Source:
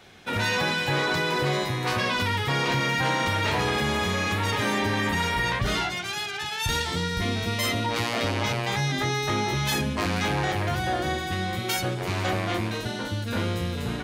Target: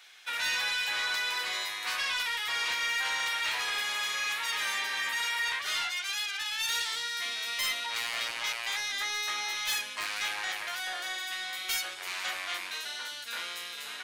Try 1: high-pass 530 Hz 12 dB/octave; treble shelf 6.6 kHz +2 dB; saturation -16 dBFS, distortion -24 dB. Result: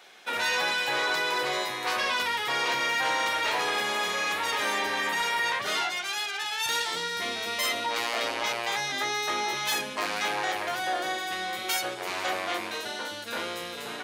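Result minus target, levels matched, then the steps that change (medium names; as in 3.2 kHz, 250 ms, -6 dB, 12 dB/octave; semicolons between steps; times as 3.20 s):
500 Hz band +13.0 dB; saturation: distortion -7 dB
change: high-pass 1.6 kHz 12 dB/octave; change: saturation -23 dBFS, distortion -17 dB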